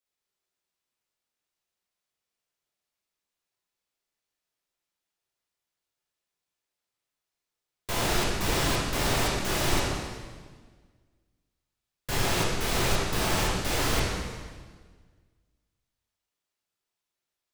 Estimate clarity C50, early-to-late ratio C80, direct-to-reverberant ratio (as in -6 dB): -1.0 dB, 1.5 dB, -6.0 dB